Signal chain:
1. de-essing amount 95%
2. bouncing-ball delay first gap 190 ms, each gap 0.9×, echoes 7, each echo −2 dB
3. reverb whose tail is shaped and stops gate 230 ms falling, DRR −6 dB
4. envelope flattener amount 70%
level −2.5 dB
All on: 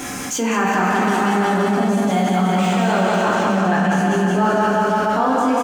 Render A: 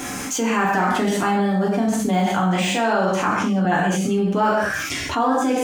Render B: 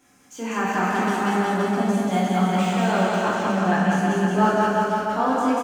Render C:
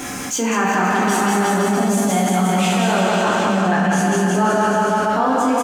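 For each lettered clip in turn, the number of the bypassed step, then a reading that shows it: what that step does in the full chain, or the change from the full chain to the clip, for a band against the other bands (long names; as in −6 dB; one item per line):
2, 8 kHz band +3.0 dB
4, change in momentary loudness spread +2 LU
1, 8 kHz band +5.5 dB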